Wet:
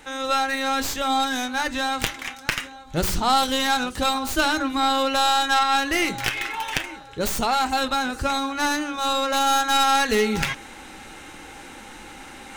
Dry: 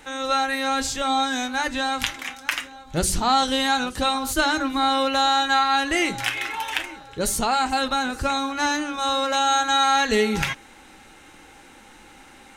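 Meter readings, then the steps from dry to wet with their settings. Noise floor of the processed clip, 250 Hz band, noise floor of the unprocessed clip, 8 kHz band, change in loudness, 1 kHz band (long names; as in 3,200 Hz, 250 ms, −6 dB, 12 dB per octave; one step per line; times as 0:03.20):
−42 dBFS, −0.5 dB, −48 dBFS, −1.0 dB, 0.0 dB, 0.0 dB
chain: stylus tracing distortion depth 0.13 ms
reversed playback
upward compression, threshold −32 dBFS
reversed playback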